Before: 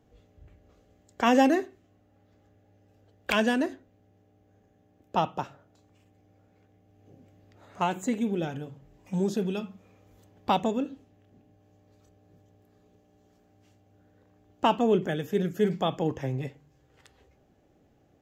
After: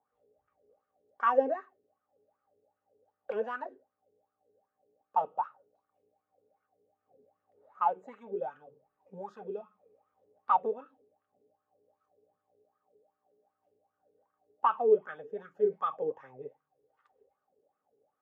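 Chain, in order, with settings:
dynamic equaliser 1,400 Hz, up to +7 dB, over −41 dBFS, Q 0.71
notch comb filter 340 Hz
LFO wah 2.6 Hz 410–1,300 Hz, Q 9.4
level +4 dB

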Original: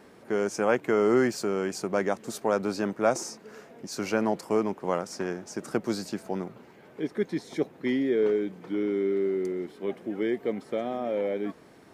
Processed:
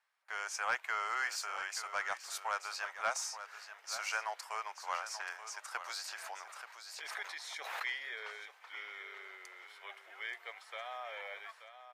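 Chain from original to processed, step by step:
noise gate with hold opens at −42 dBFS
Bessel high-pass filter 1,400 Hz, order 6
high-shelf EQ 4,900 Hz −7.5 dB
soft clipping −25 dBFS, distortion −20 dB
single-tap delay 881 ms −11 dB
0:06.04–0:08.13: background raised ahead of every attack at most 33 dB per second
level +2.5 dB

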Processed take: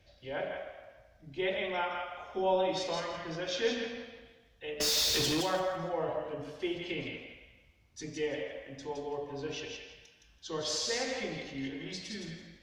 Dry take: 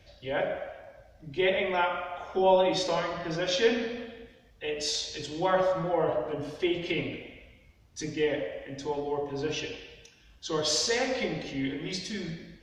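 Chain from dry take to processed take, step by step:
0:04.80–0:05.41: leveller curve on the samples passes 5
feedback echo with a high-pass in the loop 166 ms, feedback 21%, high-pass 1,000 Hz, level −3.5 dB
level −7 dB

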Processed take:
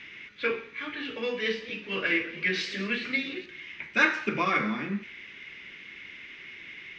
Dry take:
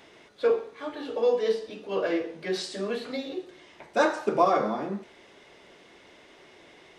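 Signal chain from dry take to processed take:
drawn EQ curve 220 Hz 0 dB, 700 Hz −18 dB, 2,300 Hz +14 dB, 4,200 Hz −3 dB, 6,200 Hz −5 dB, 9,400 Hz −27 dB
0:01.16–0:03.46: feedback echo with a swinging delay time 219 ms, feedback 70%, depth 139 cents, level −18 dB
level +3 dB

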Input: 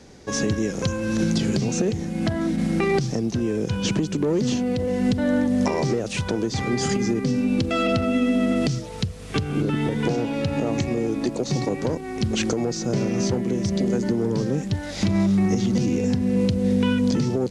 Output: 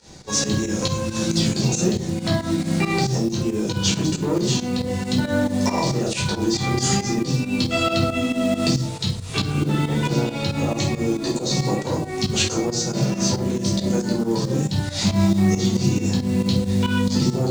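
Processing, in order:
octave-band graphic EQ 1,000/4,000/8,000 Hz +6/+9/+12 dB
rectangular room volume 420 cubic metres, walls furnished, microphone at 4.6 metres
floating-point word with a short mantissa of 4 bits
fake sidechain pumping 137 BPM, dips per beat 2, −12 dB, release 116 ms
level −8.5 dB

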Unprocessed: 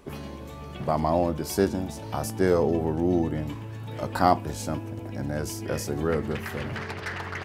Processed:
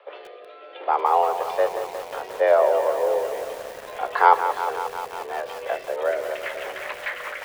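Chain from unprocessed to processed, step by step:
single-sideband voice off tune +160 Hz 310–3,500 Hz
rotating-speaker cabinet horn 0.65 Hz, later 5 Hz, at 0:05.40
feedback echo at a low word length 179 ms, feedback 80%, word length 7 bits, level −9.5 dB
level +6 dB

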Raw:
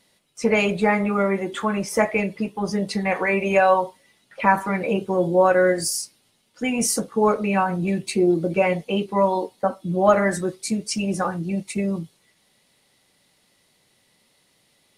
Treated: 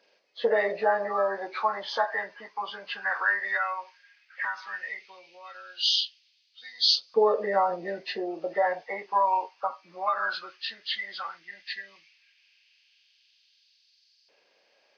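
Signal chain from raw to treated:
hearing-aid frequency compression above 1,100 Hz 1.5 to 1
downward compressor, threshold −18 dBFS, peak gain reduction 7.5 dB
auto-filter high-pass saw up 0.14 Hz 460–4,600 Hz
level −3.5 dB

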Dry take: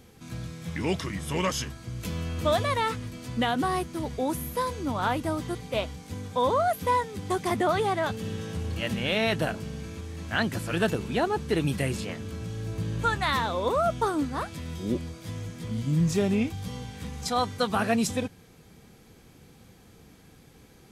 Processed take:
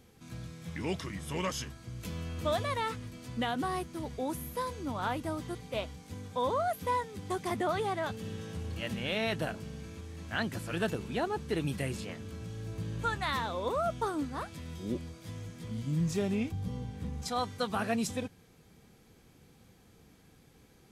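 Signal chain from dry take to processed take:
0:16.51–0:17.22: tilt shelving filter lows +6.5 dB, about 870 Hz
level −6.5 dB

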